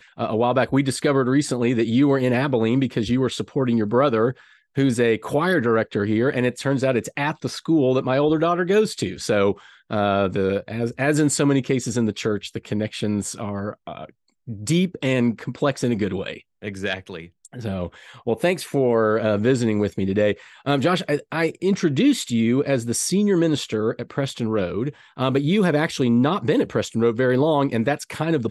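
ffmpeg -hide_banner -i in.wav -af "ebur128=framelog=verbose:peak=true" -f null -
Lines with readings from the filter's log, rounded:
Integrated loudness:
  I:         -21.6 LUFS
  Threshold: -31.8 LUFS
Loudness range:
  LRA:         4.5 LU
  Threshold: -42.0 LUFS
  LRA low:   -25.1 LUFS
  LRA high:  -20.5 LUFS
True peak:
  Peak:       -6.5 dBFS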